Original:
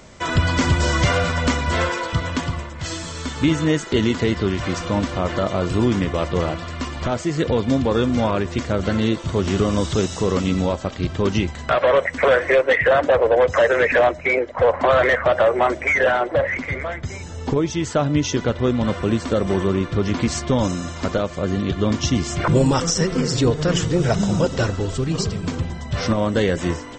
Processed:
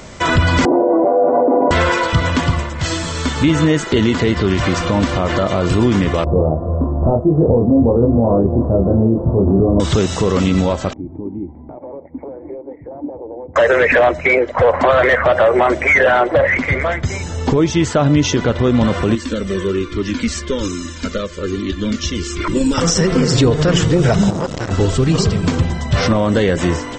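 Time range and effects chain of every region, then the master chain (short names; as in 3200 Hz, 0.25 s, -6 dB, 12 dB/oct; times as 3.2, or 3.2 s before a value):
0.65–1.71 elliptic band-pass 290–790 Hz, stop band 80 dB + fast leveller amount 100%
6.24–9.8 inverse Chebyshev low-pass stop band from 2000 Hz, stop band 50 dB + doubler 26 ms -3 dB + echo 0.323 s -16.5 dB
10.93–13.56 compressor 3:1, threshold -23 dBFS + vocal tract filter u
19.15–22.78 fixed phaser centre 310 Hz, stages 4 + cascading flanger falling 1.2 Hz
24.3–24.71 compressor 4:1, threshold -22 dBFS + core saturation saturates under 880 Hz
whole clip: dynamic EQ 6400 Hz, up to -4 dB, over -38 dBFS, Q 1; maximiser +13 dB; gain -4 dB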